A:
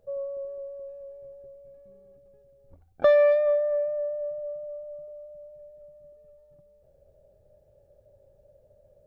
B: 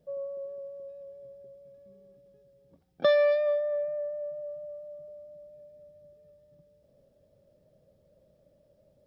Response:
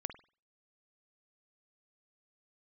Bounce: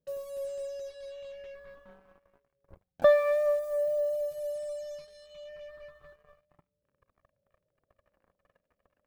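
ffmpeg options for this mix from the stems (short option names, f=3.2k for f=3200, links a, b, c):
-filter_complex "[0:a]highshelf=f=2.1k:g=-3,acrusher=bits=7:mix=0:aa=0.5,volume=2dB,asplit=2[a][b];[b]volume=-17.5dB[c];[1:a]volume=-13.5dB[d];[2:a]atrim=start_sample=2205[e];[c][e]afir=irnorm=-1:irlink=0[f];[a][d][f]amix=inputs=3:normalize=0,flanger=delay=0.7:depth=3.5:regen=-49:speed=0.29:shape=sinusoidal"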